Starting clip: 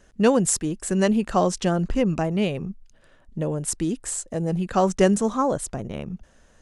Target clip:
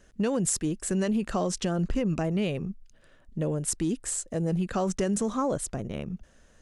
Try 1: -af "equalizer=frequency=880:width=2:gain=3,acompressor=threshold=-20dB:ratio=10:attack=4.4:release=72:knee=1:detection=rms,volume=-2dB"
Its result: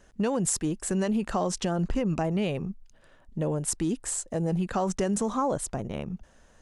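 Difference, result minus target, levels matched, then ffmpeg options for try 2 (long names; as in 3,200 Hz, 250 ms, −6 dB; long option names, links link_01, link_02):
1,000 Hz band +3.0 dB
-af "equalizer=frequency=880:width=2:gain=-4,acompressor=threshold=-20dB:ratio=10:attack=4.4:release=72:knee=1:detection=rms,volume=-2dB"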